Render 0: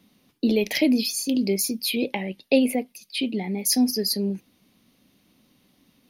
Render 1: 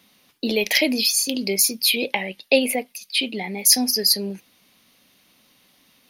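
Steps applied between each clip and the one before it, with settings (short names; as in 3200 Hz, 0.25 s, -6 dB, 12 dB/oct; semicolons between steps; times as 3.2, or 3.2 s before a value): EQ curve 300 Hz 0 dB, 540 Hz +7 dB, 1600 Hz +12 dB; gain -4 dB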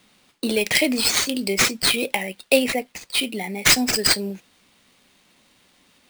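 sample-rate reducer 13000 Hz, jitter 0%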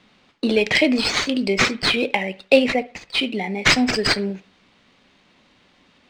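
air absorption 150 m; reverb, pre-delay 52 ms, DRR 18.5 dB; gain +4 dB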